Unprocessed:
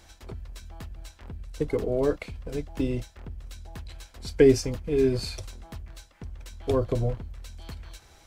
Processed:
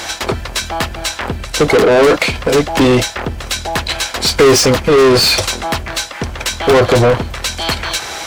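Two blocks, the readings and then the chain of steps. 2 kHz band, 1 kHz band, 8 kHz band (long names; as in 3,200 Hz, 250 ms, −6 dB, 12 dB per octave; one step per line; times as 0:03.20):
+25.0 dB, +26.0 dB, +24.5 dB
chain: mid-hump overdrive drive 36 dB, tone 6,000 Hz, clips at −6.5 dBFS
level +5 dB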